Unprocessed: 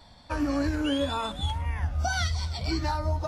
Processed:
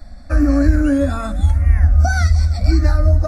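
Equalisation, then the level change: low shelf 68 Hz +11.5 dB; low shelf 250 Hz +8.5 dB; fixed phaser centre 630 Hz, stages 8; +8.0 dB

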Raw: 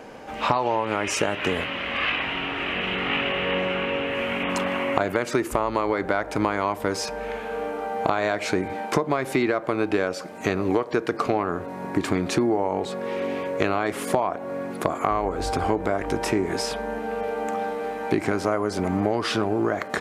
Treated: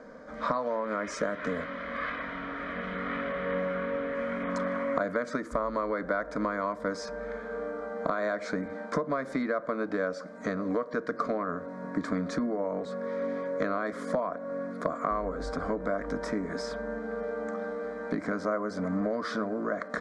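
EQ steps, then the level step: air absorption 120 m; fixed phaser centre 550 Hz, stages 8; -3.0 dB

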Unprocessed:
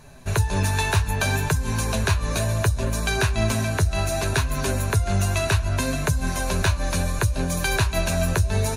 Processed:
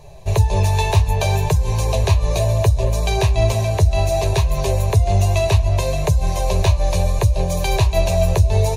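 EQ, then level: high shelf 3200 Hz -8.5 dB; bell 9700 Hz -5 dB 0.39 oct; fixed phaser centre 600 Hz, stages 4; +8.5 dB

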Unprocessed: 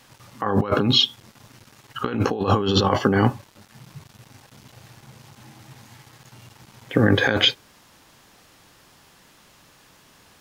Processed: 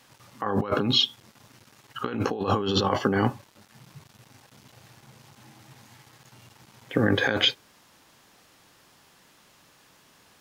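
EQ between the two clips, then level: low shelf 87 Hz -8 dB; -4.0 dB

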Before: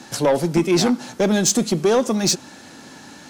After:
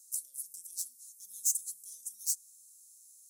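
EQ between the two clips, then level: inverse Chebyshev high-pass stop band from 2300 Hz, stop band 70 dB; +2.0 dB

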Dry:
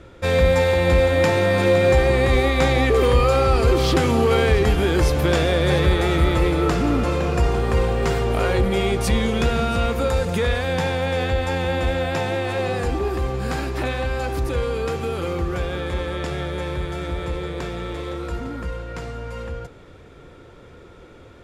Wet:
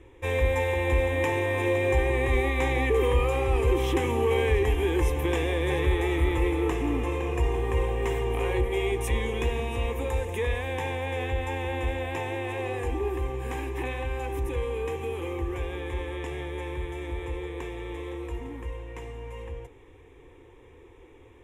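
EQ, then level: fixed phaser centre 930 Hz, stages 8; -4.5 dB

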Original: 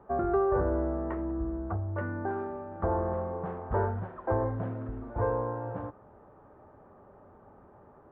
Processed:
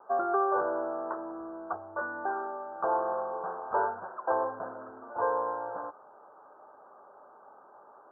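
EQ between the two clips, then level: HPF 810 Hz 12 dB/oct; steep low-pass 1600 Hz 96 dB/oct; air absorption 300 m; +8.5 dB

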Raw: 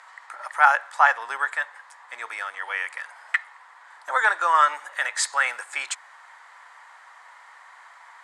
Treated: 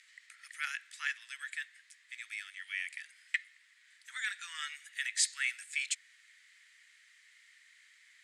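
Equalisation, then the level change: steep high-pass 2100 Hz 36 dB/oct; -4.0 dB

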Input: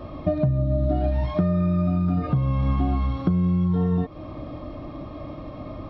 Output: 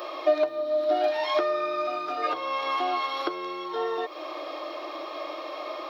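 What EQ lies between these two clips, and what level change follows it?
elliptic high-pass 340 Hz, stop band 40 dB; tilt +4 dB/oct; +7.5 dB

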